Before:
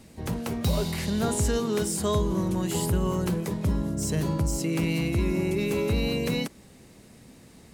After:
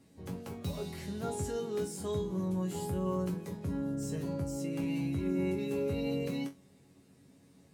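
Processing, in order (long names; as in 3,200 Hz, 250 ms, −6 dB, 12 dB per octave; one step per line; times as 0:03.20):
high-pass filter 170 Hz 6 dB per octave
low-shelf EQ 380 Hz +10.5 dB
resonators tuned to a chord F#2 fifth, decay 0.2 s
level −4.5 dB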